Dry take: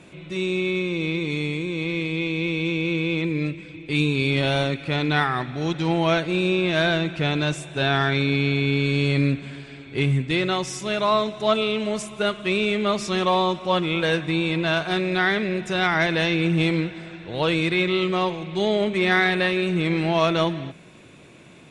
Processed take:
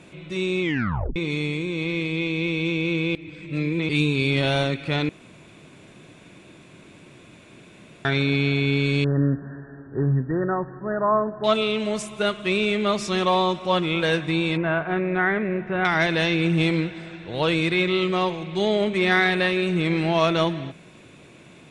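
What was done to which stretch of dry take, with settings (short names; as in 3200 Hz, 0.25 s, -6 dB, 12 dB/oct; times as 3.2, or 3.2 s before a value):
0.62 tape stop 0.54 s
3.15–3.89 reverse
5.09–8.05 room tone
9.04–11.44 brick-wall FIR low-pass 1900 Hz
14.57–15.85 LPF 2100 Hz 24 dB/oct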